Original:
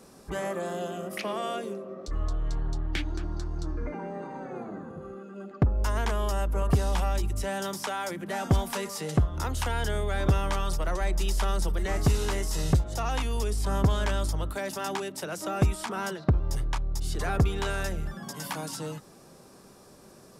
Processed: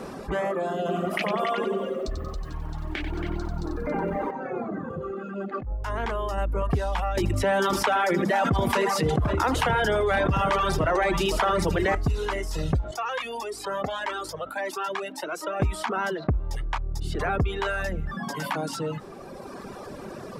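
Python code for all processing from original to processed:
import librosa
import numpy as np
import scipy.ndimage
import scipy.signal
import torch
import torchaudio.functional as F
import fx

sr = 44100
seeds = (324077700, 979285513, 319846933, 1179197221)

y = fx.chain(x, sr, fx.over_compress(threshold_db=-33.0, ratio=-1.0),
    fx.echo_single(ms=277, db=-6.0),
    fx.echo_crushed(ms=92, feedback_pct=55, bits=9, wet_db=-3.5), at=(0.79, 4.31))
y = fx.chain(y, sr, fx.over_compress(threshold_db=-30.0, ratio=-0.5),
    fx.doubler(ms=26.0, db=-12.0), at=(5.52, 6.38))
y = fx.chain(y, sr, fx.highpass(hz=89.0, slope=12),
    fx.echo_multitap(ms=(80, 161, 518, 551), db=(-9.0, -15.0, -12.0, -16.5)),
    fx.env_flatten(amount_pct=70), at=(7.17, 11.95))
y = fx.chain(y, sr, fx.highpass(hz=330.0, slope=12),
    fx.comb_cascade(direction='rising', hz=1.7), at=(12.91, 15.6))
y = fx.dereverb_blind(y, sr, rt60_s=1.5)
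y = fx.bass_treble(y, sr, bass_db=-3, treble_db=-15)
y = fx.env_flatten(y, sr, amount_pct=50)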